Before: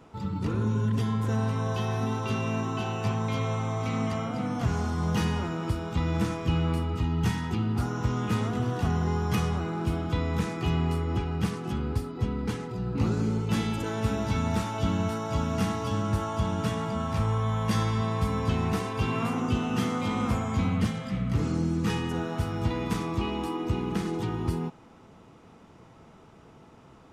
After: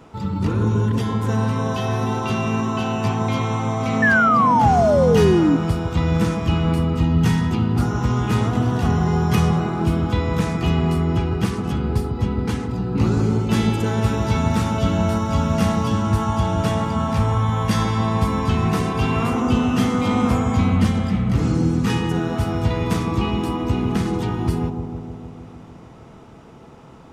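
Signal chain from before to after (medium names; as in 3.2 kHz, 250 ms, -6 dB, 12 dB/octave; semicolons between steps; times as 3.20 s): bucket-brigade echo 153 ms, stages 1024, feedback 71%, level -6 dB; painted sound fall, 4.02–5.57 s, 270–1800 Hz -23 dBFS; trim +7 dB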